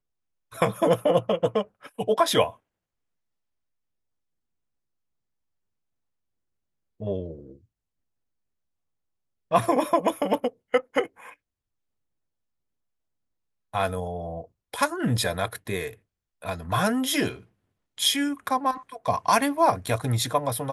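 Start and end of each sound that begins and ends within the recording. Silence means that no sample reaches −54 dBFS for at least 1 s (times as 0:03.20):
0:07.00–0:07.65
0:09.51–0:11.34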